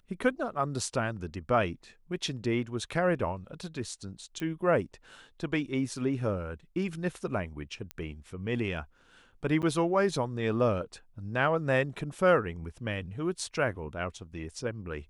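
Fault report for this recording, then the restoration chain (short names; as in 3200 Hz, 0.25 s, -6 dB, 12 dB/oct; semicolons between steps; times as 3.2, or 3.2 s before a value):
4.4 pop -23 dBFS
7.91 pop -21 dBFS
9.62–9.63 gap 7.9 ms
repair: de-click; interpolate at 9.62, 7.9 ms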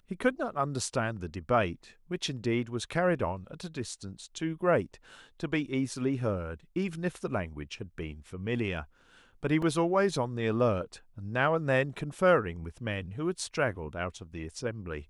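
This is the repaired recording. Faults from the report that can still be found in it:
7.91 pop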